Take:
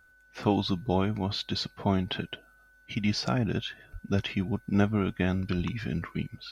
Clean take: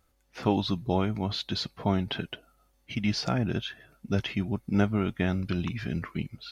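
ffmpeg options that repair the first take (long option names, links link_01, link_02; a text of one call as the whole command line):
ffmpeg -i in.wav -filter_complex "[0:a]bandreject=frequency=1500:width=30,asplit=3[link_01][link_02][link_03];[link_01]afade=type=out:start_time=3.92:duration=0.02[link_04];[link_02]highpass=frequency=140:width=0.5412,highpass=frequency=140:width=1.3066,afade=type=in:start_time=3.92:duration=0.02,afade=type=out:start_time=4.04:duration=0.02[link_05];[link_03]afade=type=in:start_time=4.04:duration=0.02[link_06];[link_04][link_05][link_06]amix=inputs=3:normalize=0,asplit=3[link_07][link_08][link_09];[link_07]afade=type=out:start_time=5.56:duration=0.02[link_10];[link_08]highpass=frequency=140:width=0.5412,highpass=frequency=140:width=1.3066,afade=type=in:start_time=5.56:duration=0.02,afade=type=out:start_time=5.68:duration=0.02[link_11];[link_09]afade=type=in:start_time=5.68:duration=0.02[link_12];[link_10][link_11][link_12]amix=inputs=3:normalize=0" out.wav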